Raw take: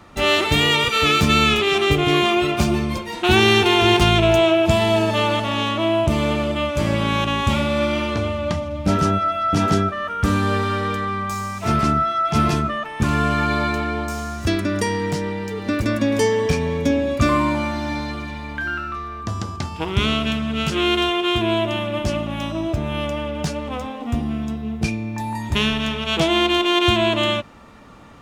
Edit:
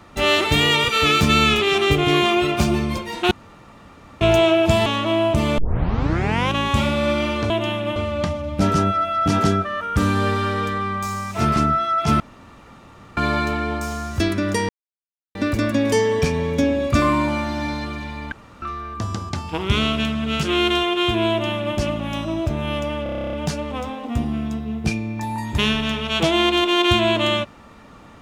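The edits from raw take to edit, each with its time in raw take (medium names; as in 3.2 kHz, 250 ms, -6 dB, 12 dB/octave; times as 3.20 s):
3.31–4.21 s: room tone
4.86–5.59 s: delete
6.31 s: tape start 0.95 s
12.47–13.44 s: room tone
14.96–15.62 s: mute
18.59–18.89 s: room tone
21.57–22.03 s: copy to 8.23 s
23.30 s: stutter 0.03 s, 11 plays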